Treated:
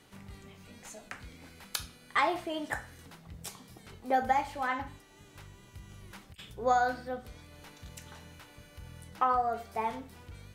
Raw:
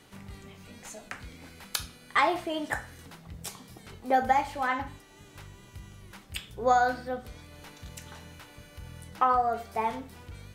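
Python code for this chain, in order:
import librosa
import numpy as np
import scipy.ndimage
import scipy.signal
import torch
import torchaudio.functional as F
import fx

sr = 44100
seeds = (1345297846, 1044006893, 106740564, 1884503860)

y = fx.over_compress(x, sr, threshold_db=-43.0, ratio=-0.5, at=(5.89, 6.53))
y = y * 10.0 ** (-3.5 / 20.0)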